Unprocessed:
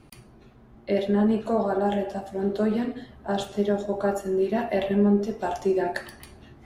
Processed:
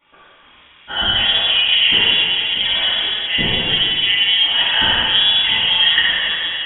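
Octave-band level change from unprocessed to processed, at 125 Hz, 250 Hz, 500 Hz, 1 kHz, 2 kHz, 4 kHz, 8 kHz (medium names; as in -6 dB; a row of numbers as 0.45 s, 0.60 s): 0.0 dB, -9.5 dB, -9.5 dB, +3.5 dB, +21.5 dB, +34.5 dB, under -30 dB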